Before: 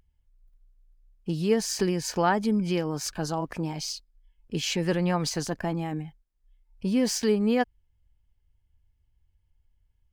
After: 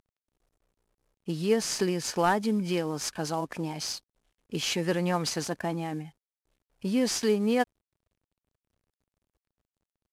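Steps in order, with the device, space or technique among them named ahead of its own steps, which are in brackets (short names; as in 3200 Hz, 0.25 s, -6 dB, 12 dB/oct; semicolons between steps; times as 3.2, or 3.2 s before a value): early wireless headset (HPF 190 Hz 6 dB/oct; CVSD 64 kbps)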